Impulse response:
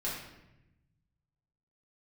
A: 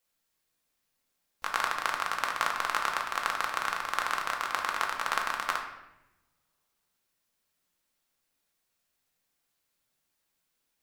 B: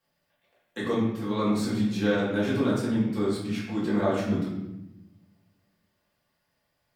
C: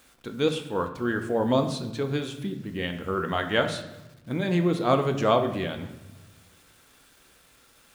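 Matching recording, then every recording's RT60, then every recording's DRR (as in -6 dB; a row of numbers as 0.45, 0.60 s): B; 0.90, 0.90, 0.95 s; 1.0, -8.0, 5.5 dB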